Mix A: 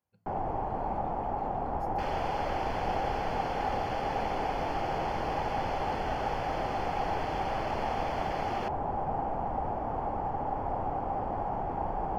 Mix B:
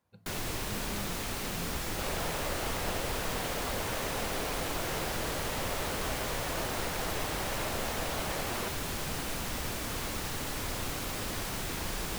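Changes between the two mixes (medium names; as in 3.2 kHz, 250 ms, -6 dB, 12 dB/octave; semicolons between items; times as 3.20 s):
speech +11.5 dB; first sound: remove resonant low-pass 800 Hz, resonance Q 7.2; master: remove Butterworth band-stop 3.8 kHz, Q 5.9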